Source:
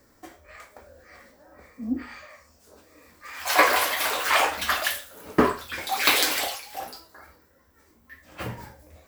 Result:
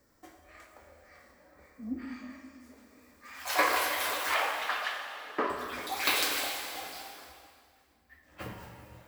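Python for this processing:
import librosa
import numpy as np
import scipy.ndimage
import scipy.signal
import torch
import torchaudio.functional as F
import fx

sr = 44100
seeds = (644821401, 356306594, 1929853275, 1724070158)

y = fx.bandpass_edges(x, sr, low_hz=450.0, high_hz=3700.0, at=(4.34, 5.5))
y = fx.rev_plate(y, sr, seeds[0], rt60_s=2.9, hf_ratio=0.9, predelay_ms=0, drr_db=3.0)
y = fx.band_widen(y, sr, depth_pct=40, at=(6.94, 8.42))
y = y * librosa.db_to_amplitude(-8.5)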